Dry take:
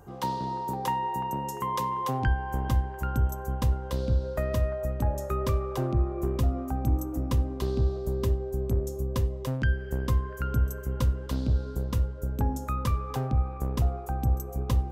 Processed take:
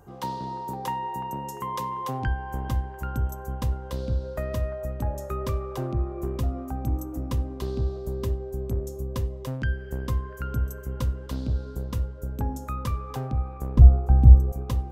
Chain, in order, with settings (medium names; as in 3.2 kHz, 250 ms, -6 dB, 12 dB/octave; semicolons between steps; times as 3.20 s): 13.77–14.52 s: tilt EQ -4 dB/octave; trim -1.5 dB